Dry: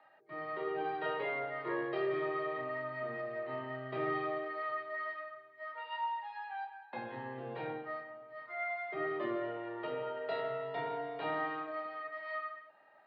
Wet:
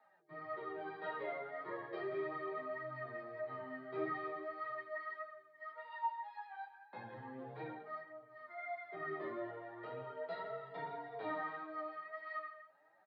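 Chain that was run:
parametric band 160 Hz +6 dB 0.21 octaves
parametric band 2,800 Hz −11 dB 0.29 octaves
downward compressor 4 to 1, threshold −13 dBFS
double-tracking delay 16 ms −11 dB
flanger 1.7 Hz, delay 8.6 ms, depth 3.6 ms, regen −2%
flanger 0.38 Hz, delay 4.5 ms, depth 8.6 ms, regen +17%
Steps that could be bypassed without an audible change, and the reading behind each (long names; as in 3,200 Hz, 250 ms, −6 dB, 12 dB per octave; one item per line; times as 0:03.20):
downward compressor, threshold −13 dBFS: peak of its input −23.5 dBFS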